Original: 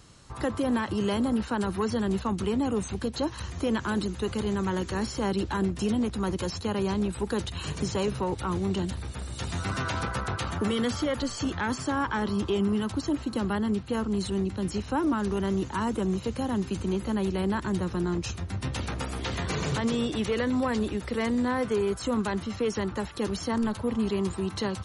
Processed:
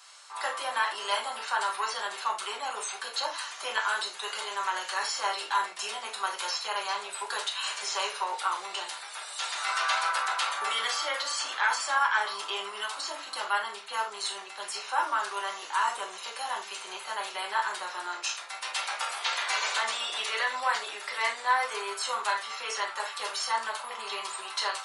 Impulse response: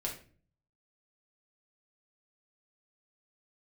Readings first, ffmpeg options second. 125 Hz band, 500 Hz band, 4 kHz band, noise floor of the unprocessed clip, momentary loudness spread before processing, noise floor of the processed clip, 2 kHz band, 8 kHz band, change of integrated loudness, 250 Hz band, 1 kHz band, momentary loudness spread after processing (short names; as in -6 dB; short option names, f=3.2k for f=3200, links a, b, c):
under -40 dB, -11.0 dB, +6.5 dB, -40 dBFS, 5 LU, -43 dBFS, +6.5 dB, +5.5 dB, -1.5 dB, under -30 dB, +5.5 dB, 8 LU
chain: -filter_complex "[0:a]highpass=f=850:w=0.5412,highpass=f=850:w=1.3066[a];[1:a]atrim=start_sample=2205,afade=t=out:st=0.15:d=0.01,atrim=end_sample=7056[b];[a][b]afir=irnorm=-1:irlink=0,volume=5.5dB"